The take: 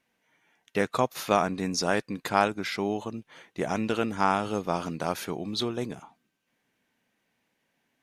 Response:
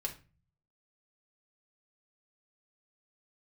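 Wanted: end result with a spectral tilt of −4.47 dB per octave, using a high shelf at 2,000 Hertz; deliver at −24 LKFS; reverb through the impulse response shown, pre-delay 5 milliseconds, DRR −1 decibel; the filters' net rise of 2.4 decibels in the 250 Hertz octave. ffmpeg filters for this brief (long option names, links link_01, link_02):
-filter_complex "[0:a]equalizer=frequency=250:width_type=o:gain=3,highshelf=frequency=2000:gain=4,asplit=2[link_01][link_02];[1:a]atrim=start_sample=2205,adelay=5[link_03];[link_02][link_03]afir=irnorm=-1:irlink=0,volume=0dB[link_04];[link_01][link_04]amix=inputs=2:normalize=0,volume=-0.5dB"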